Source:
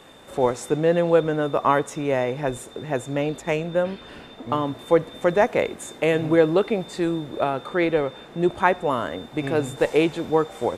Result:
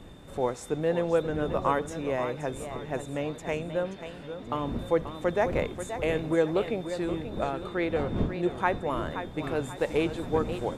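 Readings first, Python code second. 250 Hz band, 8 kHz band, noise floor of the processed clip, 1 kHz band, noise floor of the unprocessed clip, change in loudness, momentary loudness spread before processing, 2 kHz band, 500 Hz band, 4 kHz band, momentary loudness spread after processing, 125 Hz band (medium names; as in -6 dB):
-6.5 dB, -7.0 dB, -43 dBFS, -7.0 dB, -44 dBFS, -7.0 dB, 10 LU, -7.0 dB, -7.0 dB, -7.0 dB, 8 LU, -4.5 dB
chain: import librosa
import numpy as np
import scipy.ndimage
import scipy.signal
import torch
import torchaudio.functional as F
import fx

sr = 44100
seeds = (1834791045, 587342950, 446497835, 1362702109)

y = fx.dmg_wind(x, sr, seeds[0], corner_hz=240.0, level_db=-32.0)
y = fx.echo_warbled(y, sr, ms=530, feedback_pct=41, rate_hz=2.8, cents=169, wet_db=-10.0)
y = y * 10.0 ** (-7.5 / 20.0)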